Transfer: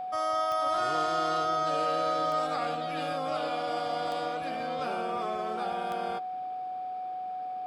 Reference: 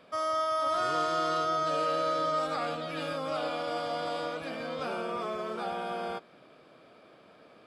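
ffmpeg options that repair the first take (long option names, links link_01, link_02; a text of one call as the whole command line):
ffmpeg -i in.wav -af "adeclick=threshold=4,bandreject=frequency=740:width=30" out.wav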